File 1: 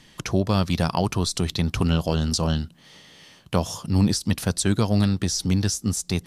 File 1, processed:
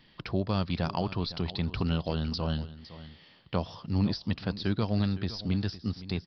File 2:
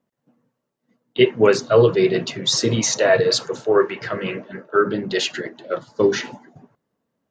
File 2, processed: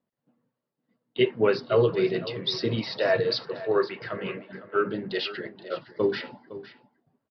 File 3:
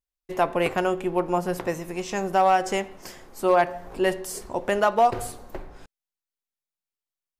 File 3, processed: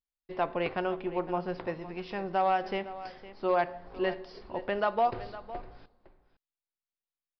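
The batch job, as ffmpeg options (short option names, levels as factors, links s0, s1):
-filter_complex "[0:a]asplit=2[s0][s1];[s1]aecho=0:1:510:0.168[s2];[s0][s2]amix=inputs=2:normalize=0,aresample=11025,aresample=44100,volume=0.422"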